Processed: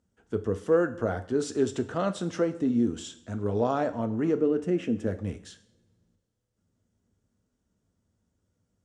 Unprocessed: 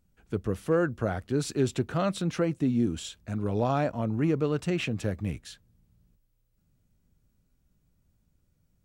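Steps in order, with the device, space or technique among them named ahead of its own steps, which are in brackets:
0:04.40–0:05.07: octave-band graphic EQ 125/250/1,000/4,000/8,000 Hz −5/+8/−9/−11/−7 dB
car door speaker (loudspeaker in its box 91–8,500 Hz, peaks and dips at 140 Hz −10 dB, 450 Hz +4 dB, 2,400 Hz −9 dB, 4,200 Hz −6 dB)
coupled-rooms reverb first 0.56 s, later 1.9 s, from −21 dB, DRR 9 dB

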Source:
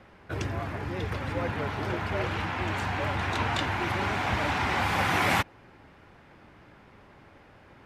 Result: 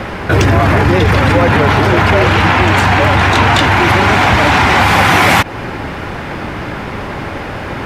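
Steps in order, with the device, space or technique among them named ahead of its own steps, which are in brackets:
loud club master (downward compressor 2 to 1, threshold −30 dBFS, peak gain reduction 5.5 dB; hard clipping −23 dBFS, distortion −27 dB; boost into a limiter +32.5 dB)
level −1 dB

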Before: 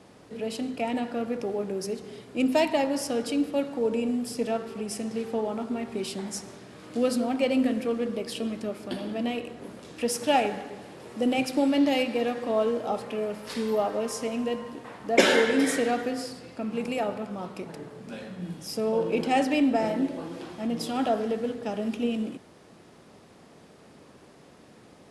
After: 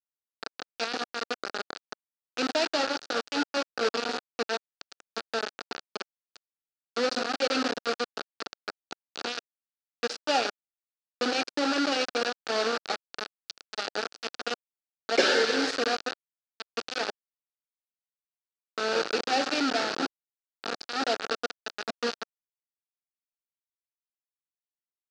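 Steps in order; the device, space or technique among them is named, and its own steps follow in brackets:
0:13.26–0:13.88: tilt shelving filter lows −6.5 dB, about 1,400 Hz
hand-held game console (bit reduction 4 bits; loudspeaker in its box 400–5,500 Hz, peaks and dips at 630 Hz −4 dB, 1,000 Hz −10 dB, 1,400 Hz +4 dB, 2,100 Hz −8 dB, 3,200 Hz −4 dB, 4,500 Hz +5 dB)

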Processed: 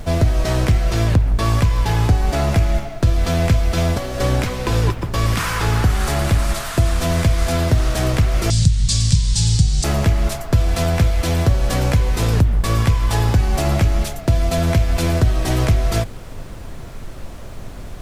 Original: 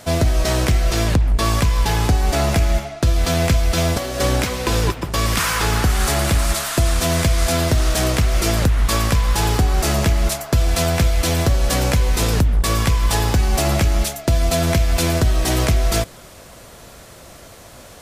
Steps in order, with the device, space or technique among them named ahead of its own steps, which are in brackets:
car interior (parametric band 110 Hz +6.5 dB 0.7 octaves; high-shelf EQ 3,700 Hz −6.5 dB; brown noise bed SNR 14 dB)
0:08.50–0:09.84: drawn EQ curve 100 Hz 0 dB, 150 Hz +6 dB, 330 Hz −17 dB, 1,200 Hz −20 dB, 2,500 Hz −6 dB, 4,200 Hz +10 dB, 8,600 Hz +12 dB, 14,000 Hz −25 dB
level −1 dB

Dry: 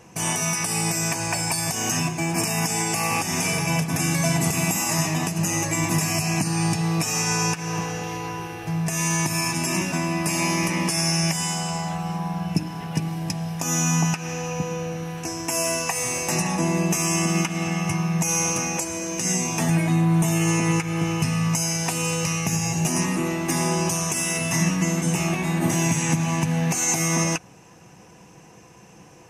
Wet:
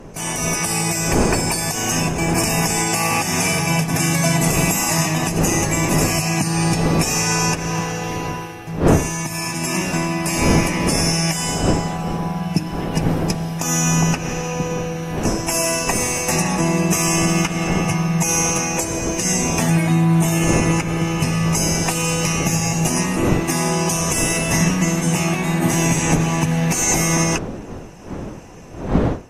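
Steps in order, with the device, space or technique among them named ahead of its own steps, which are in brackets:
smartphone video outdoors (wind on the microphone 370 Hz; automatic gain control gain up to 5.5 dB; level −1 dB; AAC 48 kbit/s 44,100 Hz)

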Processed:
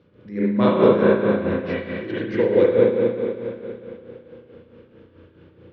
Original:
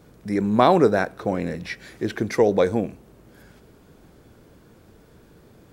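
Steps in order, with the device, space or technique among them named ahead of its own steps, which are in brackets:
combo amplifier with spring reverb and tremolo (spring reverb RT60 3 s, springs 34/58 ms, chirp 70 ms, DRR −8.5 dB; amplitude tremolo 4.6 Hz, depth 61%; loudspeaker in its box 76–4,200 Hz, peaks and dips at 92 Hz +4 dB, 240 Hz +3 dB, 360 Hz +4 dB, 510 Hz +7 dB, 740 Hz −10 dB, 2,900 Hz +6 dB)
level −7 dB

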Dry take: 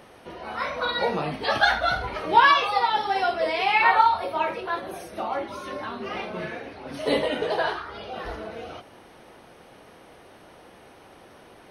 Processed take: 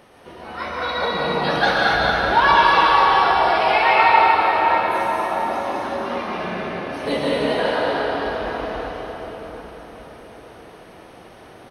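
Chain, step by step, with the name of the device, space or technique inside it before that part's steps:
cave (single-tap delay 231 ms −8 dB; convolution reverb RT60 5.0 s, pre-delay 110 ms, DRR −5 dB)
level −1 dB

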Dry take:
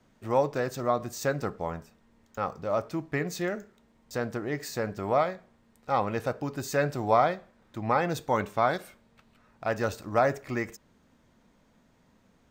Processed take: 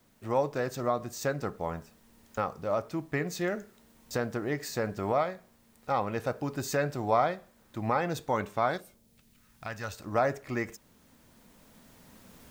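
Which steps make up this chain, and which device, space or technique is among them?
cheap recorder with automatic gain (white noise bed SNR 38 dB; camcorder AGC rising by 5.7 dB per second)
0:08.79–0:09.98: parametric band 2,100 Hz → 290 Hz −13 dB 2.1 octaves
level −3 dB

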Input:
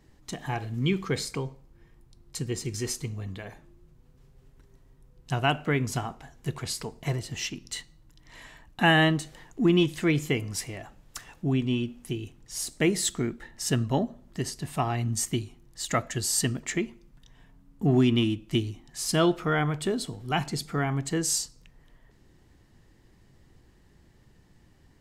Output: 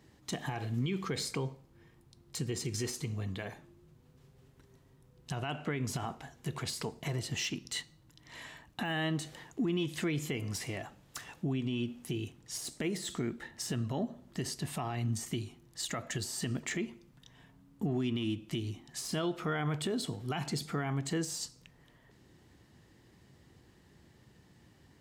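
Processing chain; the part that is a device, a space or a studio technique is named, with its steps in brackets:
broadcast voice chain (high-pass filter 84 Hz 12 dB per octave; de-essing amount 70%; downward compressor 4 to 1, threshold −27 dBFS, peak gain reduction 9 dB; parametric band 3,500 Hz +2 dB; brickwall limiter −25 dBFS, peak gain reduction 10 dB)
0:05.36–0:05.82: Bessel low-pass filter 11,000 Hz

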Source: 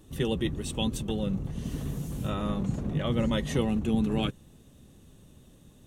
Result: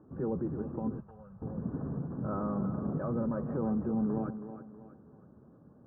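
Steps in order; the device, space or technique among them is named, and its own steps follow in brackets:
PA system with an anti-feedback notch (high-pass filter 120 Hz 12 dB per octave; Butterworth band-reject 2,000 Hz, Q 3.9; brickwall limiter −24.5 dBFS, peak gain reduction 8.5 dB)
mains-hum notches 50/100/150 Hz
feedback echo with a high-pass in the loop 322 ms, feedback 41%, high-pass 160 Hz, level −10 dB
0:01.00–0:01.42: guitar amp tone stack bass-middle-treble 10-0-10
Butterworth low-pass 1,500 Hz 48 dB per octave

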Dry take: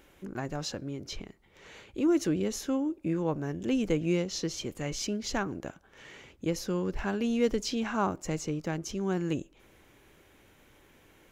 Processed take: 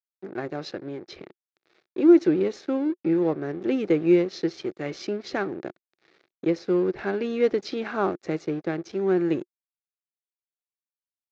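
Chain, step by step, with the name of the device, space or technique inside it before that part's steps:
blown loudspeaker (dead-zone distortion −45 dBFS; loudspeaker in its box 190–4,200 Hz, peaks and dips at 230 Hz −6 dB, 360 Hz +8 dB, 980 Hz −8 dB, 3,000 Hz −9 dB)
level +6 dB

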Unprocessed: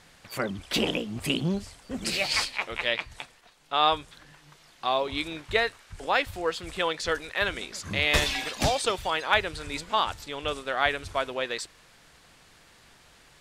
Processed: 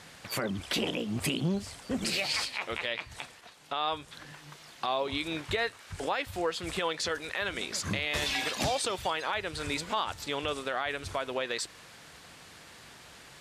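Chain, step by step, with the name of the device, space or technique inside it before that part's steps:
podcast mastering chain (high-pass filter 71 Hz; downward compressor 2.5 to 1, threshold −34 dBFS, peak gain reduction 12 dB; brickwall limiter −24.5 dBFS, peak gain reduction 7.5 dB; level +5.5 dB; MP3 96 kbit/s 32,000 Hz)

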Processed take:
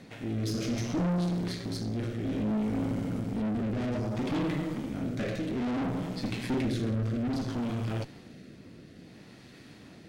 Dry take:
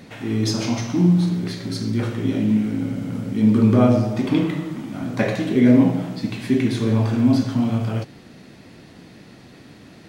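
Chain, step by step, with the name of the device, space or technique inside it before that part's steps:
overdriven rotary cabinet (tube saturation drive 26 dB, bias 0.7; rotating-speaker cabinet horn 0.6 Hz)

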